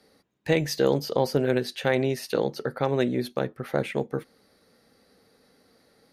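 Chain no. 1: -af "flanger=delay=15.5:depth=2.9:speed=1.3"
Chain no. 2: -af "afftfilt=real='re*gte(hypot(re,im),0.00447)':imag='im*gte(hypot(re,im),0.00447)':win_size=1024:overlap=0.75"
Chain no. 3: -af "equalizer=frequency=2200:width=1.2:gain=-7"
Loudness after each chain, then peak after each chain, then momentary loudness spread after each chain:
−29.5, −26.5, −27.0 LKFS; −11.0, −9.0, −9.0 dBFS; 6, 7, 7 LU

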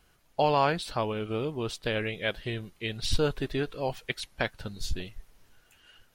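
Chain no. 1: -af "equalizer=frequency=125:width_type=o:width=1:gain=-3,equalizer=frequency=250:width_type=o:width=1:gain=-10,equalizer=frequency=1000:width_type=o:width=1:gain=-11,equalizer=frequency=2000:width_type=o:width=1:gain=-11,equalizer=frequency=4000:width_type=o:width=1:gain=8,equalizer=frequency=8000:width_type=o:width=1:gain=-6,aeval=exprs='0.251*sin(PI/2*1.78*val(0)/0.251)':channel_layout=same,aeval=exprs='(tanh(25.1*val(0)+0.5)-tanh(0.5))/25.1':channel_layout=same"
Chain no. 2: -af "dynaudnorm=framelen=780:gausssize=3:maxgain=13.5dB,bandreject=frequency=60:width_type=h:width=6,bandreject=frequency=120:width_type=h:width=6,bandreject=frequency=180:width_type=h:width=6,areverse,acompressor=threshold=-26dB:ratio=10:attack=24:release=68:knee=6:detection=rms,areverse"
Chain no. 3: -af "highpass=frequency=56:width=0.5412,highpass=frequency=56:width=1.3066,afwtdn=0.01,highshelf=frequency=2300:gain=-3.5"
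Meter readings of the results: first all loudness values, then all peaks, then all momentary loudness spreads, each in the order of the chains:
−33.5, −30.0, −31.5 LKFS; −24.5, −11.0, −12.0 dBFS; 9, 5, 13 LU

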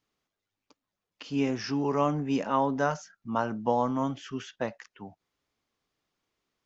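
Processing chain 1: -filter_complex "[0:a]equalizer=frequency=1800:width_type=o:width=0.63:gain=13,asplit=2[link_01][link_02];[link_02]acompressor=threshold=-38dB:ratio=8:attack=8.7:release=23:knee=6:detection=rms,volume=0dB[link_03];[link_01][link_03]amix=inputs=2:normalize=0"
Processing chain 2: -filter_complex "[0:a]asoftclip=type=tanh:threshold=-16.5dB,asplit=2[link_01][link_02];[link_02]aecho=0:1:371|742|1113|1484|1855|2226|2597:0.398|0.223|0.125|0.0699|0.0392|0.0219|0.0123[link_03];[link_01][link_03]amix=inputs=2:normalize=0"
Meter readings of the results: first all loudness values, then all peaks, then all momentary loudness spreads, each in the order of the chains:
−26.5, −30.0 LKFS; −9.0, −15.5 dBFS; 13, 16 LU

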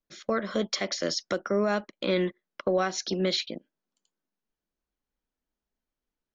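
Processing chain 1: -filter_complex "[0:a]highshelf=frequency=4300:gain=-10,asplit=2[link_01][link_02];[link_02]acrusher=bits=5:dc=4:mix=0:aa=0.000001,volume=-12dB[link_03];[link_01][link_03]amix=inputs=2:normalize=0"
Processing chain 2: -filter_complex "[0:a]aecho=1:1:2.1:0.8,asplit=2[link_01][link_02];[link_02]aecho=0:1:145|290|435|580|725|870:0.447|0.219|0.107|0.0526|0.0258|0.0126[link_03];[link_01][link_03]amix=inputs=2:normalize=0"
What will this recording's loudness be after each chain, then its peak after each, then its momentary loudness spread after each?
−28.0, −26.0 LKFS; −14.0, −11.5 dBFS; 7, 6 LU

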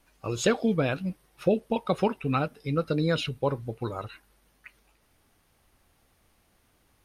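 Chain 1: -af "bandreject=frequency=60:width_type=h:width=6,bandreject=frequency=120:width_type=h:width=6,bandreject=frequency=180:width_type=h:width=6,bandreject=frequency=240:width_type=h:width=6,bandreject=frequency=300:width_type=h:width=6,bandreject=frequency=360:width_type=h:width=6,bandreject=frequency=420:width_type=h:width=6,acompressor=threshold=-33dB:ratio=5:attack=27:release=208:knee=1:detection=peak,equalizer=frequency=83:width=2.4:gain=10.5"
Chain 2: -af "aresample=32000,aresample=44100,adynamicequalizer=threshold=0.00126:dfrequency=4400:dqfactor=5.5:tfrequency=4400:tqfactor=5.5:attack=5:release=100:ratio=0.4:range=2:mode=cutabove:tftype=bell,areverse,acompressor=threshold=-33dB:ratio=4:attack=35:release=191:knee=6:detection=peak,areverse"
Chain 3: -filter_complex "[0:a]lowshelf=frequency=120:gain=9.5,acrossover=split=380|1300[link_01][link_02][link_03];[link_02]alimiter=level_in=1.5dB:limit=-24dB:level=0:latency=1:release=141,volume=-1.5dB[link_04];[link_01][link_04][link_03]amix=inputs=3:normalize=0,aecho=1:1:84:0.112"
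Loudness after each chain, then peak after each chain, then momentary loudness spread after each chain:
−35.5, −35.0, −28.0 LKFS; −19.0, −18.0, −10.5 dBFS; 14, 15, 8 LU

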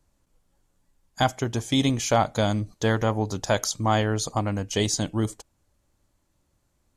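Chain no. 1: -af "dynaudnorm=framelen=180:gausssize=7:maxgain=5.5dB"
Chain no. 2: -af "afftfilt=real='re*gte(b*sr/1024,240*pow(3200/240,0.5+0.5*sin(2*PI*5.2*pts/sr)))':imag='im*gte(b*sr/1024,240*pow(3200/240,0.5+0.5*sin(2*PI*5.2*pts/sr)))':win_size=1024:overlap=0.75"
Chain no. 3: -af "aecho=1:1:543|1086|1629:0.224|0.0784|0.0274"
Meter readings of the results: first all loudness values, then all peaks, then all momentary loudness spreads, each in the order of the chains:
−20.0, −30.0, −25.0 LKFS; −4.5, −10.0, −9.5 dBFS; 5, 11, 9 LU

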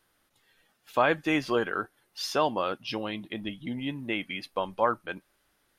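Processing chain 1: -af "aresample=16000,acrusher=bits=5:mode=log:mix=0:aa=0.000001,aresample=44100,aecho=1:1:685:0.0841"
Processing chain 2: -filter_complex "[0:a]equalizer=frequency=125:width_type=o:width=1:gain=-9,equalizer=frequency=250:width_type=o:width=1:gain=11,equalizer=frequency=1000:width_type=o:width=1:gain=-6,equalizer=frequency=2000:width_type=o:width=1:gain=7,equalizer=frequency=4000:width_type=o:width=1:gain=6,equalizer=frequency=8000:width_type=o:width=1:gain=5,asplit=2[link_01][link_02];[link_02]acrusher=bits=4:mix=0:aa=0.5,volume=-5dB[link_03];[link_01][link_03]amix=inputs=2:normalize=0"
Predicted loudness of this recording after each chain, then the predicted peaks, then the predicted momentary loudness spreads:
−30.0, −22.5 LKFS; −11.5, −3.0 dBFS; 12, 12 LU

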